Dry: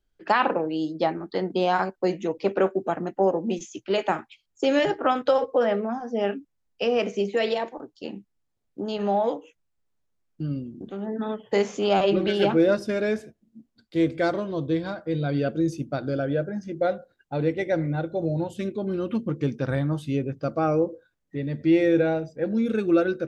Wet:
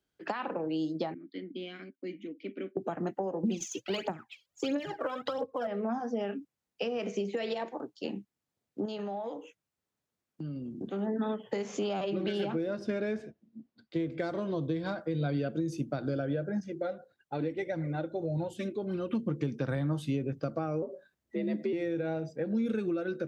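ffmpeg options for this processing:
ffmpeg -i in.wav -filter_complex "[0:a]asettb=1/sr,asplit=3[link_01][link_02][link_03];[link_01]atrim=end=1.144[link_04];[link_02]atrim=start=1.14:end=2.77,asetpts=PTS-STARTPTS,afade=type=in:duration=0.004:curve=qsin,afade=type=out:start_time=1.626:duration=0.004:curve=qsin,asplit=3[link_05][link_06][link_07];[link_05]bandpass=frequency=270:width_type=q:width=8,volume=0dB[link_08];[link_06]bandpass=frequency=2290:width_type=q:width=8,volume=-6dB[link_09];[link_07]bandpass=frequency=3010:width_type=q:width=8,volume=-9dB[link_10];[link_08][link_09][link_10]amix=inputs=3:normalize=0[link_11];[link_03]atrim=start=2.766[link_12];[link_04][link_11]acrossfade=duration=0.004:curve1=hsin:curve2=qsin[link_13];[link_13][link_12]acrossfade=duration=0.004:curve1=qsin:curve2=hsin,asettb=1/sr,asplit=3[link_14][link_15][link_16];[link_14]atrim=end=3.434[link_17];[link_15]atrim=start=3.43:end=5.67,asetpts=PTS-STARTPTS,afade=type=in:duration=0.004:curve=qsin,afade=type=out:start_time=2.236:duration=0.004:curve=qsin,aphaser=in_gain=1:out_gain=1:delay=2.2:decay=0.73:speed=1.5:type=triangular[link_18];[link_16]atrim=start=5.666[link_19];[link_17][link_18]acrossfade=duration=0.004:curve1=hsin:curve2=qsin[link_20];[link_20][link_19]acrossfade=duration=0.004:curve1=qsin:curve2=hsin,asettb=1/sr,asplit=3[link_21][link_22][link_23];[link_21]atrim=end=8.854[link_24];[link_22]atrim=start=8.85:end=10.78,asetpts=PTS-STARTPTS,afade=type=in:duration=0.004:curve=qsin,afade=type=out:start_time=1.926:duration=0.004:curve=qsin,acompressor=threshold=-34dB:ratio=6:attack=3.2:release=140:knee=1:detection=peak[link_25];[link_23]atrim=start=10.776[link_26];[link_24][link_25]acrossfade=duration=0.004:curve1=hsin:curve2=qsin[link_27];[link_27][link_26]acrossfade=duration=0.004:curve1=qsin:curve2=hsin,asettb=1/sr,asplit=3[link_28][link_29][link_30];[link_28]atrim=end=12.694[link_31];[link_29]atrim=start=12.69:end=14.2,asetpts=PTS-STARTPTS,afade=type=in:duration=0.004:curve=qsin,afade=type=out:start_time=1.506:duration=0.004:curve=qsin,adynamicsmooth=sensitivity=2:basefreq=5000[link_32];[link_30]atrim=start=14.196[link_33];[link_31][link_32]acrossfade=duration=0.004:curve1=hsin:curve2=qsin[link_34];[link_34][link_33]acrossfade=duration=0.004:curve1=qsin:curve2=hsin,asettb=1/sr,asplit=3[link_35][link_36][link_37];[link_35]atrim=end=16.604[link_38];[link_36]atrim=start=16.6:end=19.13,asetpts=PTS-STARTPTS,afade=type=in:duration=0.004:curve=qsin,afade=type=out:start_time=2.526:duration=0.004:curve=qsin,flanger=delay=0.8:depth=3.1:regen=34:speed=1.7:shape=triangular[link_39];[link_37]atrim=start=19.126[link_40];[link_38][link_39]acrossfade=duration=0.004:curve1=hsin:curve2=qsin[link_41];[link_41][link_40]acrossfade=duration=0.004:curve1=qsin:curve2=hsin,asettb=1/sr,asplit=3[link_42][link_43][link_44];[link_42]atrim=end=20.824[link_45];[link_43]atrim=start=20.82:end=21.73,asetpts=PTS-STARTPTS,afade=type=in:duration=0.004:curve=qsin,afade=type=out:start_time=0.906:duration=0.004:curve=qsin,afreqshift=64[link_46];[link_44]atrim=start=21.726[link_47];[link_45][link_46]acrossfade=duration=0.004:curve1=hsin:curve2=qsin[link_48];[link_48][link_47]acrossfade=duration=0.004:curve1=qsin:curve2=hsin,acompressor=threshold=-25dB:ratio=6,highpass=110,acrossover=split=220[link_49][link_50];[link_50]acompressor=threshold=-31dB:ratio=6[link_51];[link_49][link_51]amix=inputs=2:normalize=0" out.wav

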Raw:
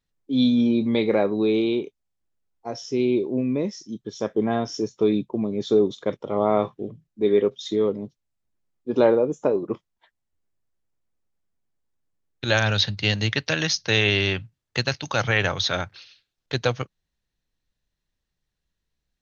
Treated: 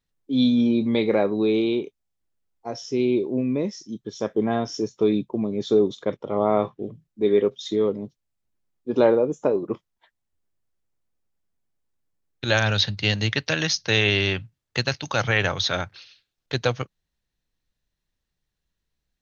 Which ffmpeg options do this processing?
ffmpeg -i in.wav -filter_complex "[0:a]asettb=1/sr,asplit=3[link_01][link_02][link_03];[link_01]atrim=end=6.054[link_04];[link_02]atrim=start=6.05:end=6.82,asetpts=PTS-STARTPTS,afade=type=in:duration=0.004:curve=qsin,afade=type=out:start_time=0.766:duration=0.004:curve=qsin,highshelf=frequency=6100:gain=-9[link_05];[link_03]atrim=start=6.816[link_06];[link_04][link_05]acrossfade=duration=0.004:curve1=hsin:curve2=qsin[link_07];[link_07][link_06]acrossfade=duration=0.004:curve1=qsin:curve2=hsin" out.wav

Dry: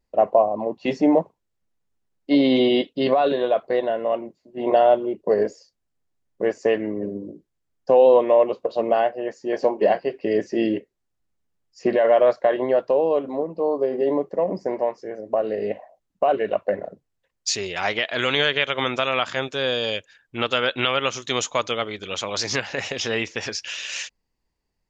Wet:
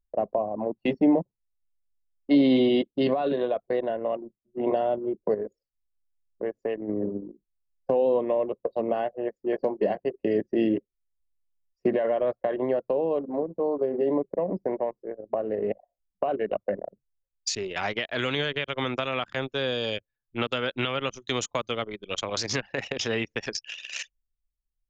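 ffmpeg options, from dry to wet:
ffmpeg -i in.wav -filter_complex "[0:a]asettb=1/sr,asplit=3[link_01][link_02][link_03];[link_01]atrim=end=5.344[link_04];[link_02]atrim=start=5.34:end=6.89,asetpts=PTS-STARTPTS,afade=type=in:duration=0.004:curve=qsin,afade=type=out:start_time=1.546:duration=0.004:curve=qsin,acompressor=threshold=-35dB:ratio=1.5:attack=3.2:release=140:knee=1:detection=peak[link_05];[link_03]atrim=start=6.886[link_06];[link_04][link_05]acrossfade=duration=0.004:curve1=hsin:curve2=qsin[link_07];[link_07][link_06]acrossfade=duration=0.004:curve1=qsin:curve2=hsin,anlmdn=100,acrossover=split=330[link_08][link_09];[link_09]acompressor=threshold=-27dB:ratio=4[link_10];[link_08][link_10]amix=inputs=2:normalize=0" out.wav

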